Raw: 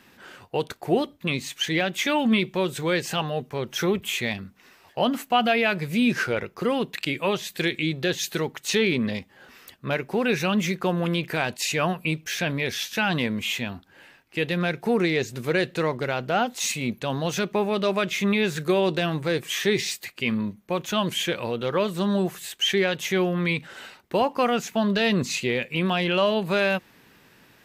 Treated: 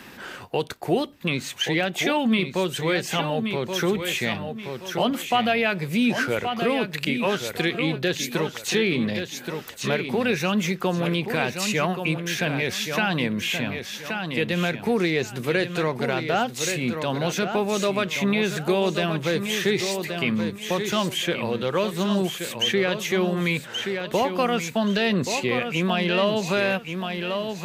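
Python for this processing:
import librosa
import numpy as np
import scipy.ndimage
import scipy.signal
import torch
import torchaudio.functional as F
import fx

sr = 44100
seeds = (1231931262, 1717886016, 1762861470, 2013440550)

p1 = x + fx.echo_feedback(x, sr, ms=1126, feedback_pct=26, wet_db=-8.5, dry=0)
y = fx.band_squash(p1, sr, depth_pct=40)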